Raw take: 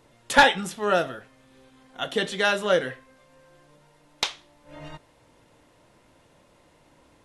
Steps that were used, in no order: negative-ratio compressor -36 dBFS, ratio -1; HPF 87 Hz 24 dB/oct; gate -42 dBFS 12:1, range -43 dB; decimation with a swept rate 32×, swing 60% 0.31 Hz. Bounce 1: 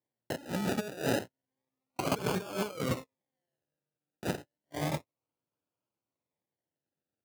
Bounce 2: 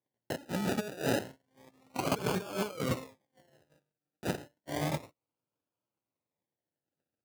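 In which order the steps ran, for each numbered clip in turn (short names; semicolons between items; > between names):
gate > negative-ratio compressor > decimation with a swept rate > HPF; negative-ratio compressor > gate > decimation with a swept rate > HPF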